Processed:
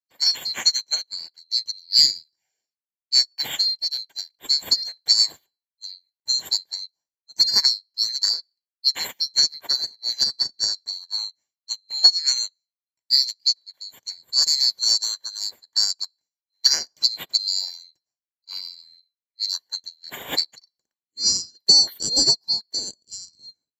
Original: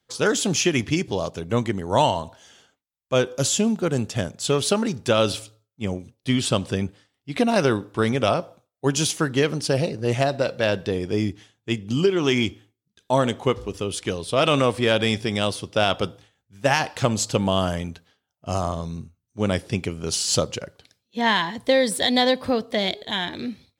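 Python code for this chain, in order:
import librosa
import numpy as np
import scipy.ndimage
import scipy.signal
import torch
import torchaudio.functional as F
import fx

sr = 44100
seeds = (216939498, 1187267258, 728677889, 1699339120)

y = fx.band_swap(x, sr, width_hz=4000)
y = fx.notch_comb(y, sr, f0_hz=1300.0)
y = fx.upward_expand(y, sr, threshold_db=-37.0, expansion=2.5)
y = y * 10.0 ** (6.5 / 20.0)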